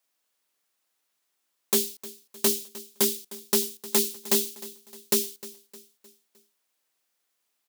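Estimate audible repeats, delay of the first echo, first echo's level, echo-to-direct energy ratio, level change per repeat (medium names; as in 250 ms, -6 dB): 3, 307 ms, -18.0 dB, -17.0 dB, -7.0 dB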